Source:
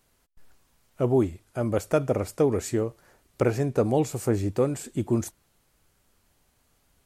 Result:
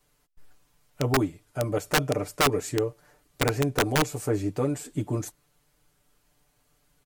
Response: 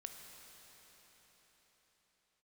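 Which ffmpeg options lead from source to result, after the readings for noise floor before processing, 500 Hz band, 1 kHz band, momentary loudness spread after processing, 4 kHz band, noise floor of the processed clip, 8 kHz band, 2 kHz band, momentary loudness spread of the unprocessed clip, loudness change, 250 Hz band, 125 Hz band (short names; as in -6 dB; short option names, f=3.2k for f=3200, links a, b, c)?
-68 dBFS, -3.5 dB, +4.5 dB, 8 LU, +13.5 dB, -69 dBFS, +4.5 dB, +10.5 dB, 6 LU, -1.0 dB, -2.5 dB, -1.0 dB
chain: -af "aecho=1:1:6.8:0.93,adynamicequalizer=threshold=0.0141:dfrequency=140:dqfactor=3.1:tfrequency=140:tqfactor=3.1:attack=5:release=100:ratio=0.375:range=3:mode=cutabove:tftype=bell,aeval=exprs='(mod(3.76*val(0)+1,2)-1)/3.76':c=same,volume=-3.5dB"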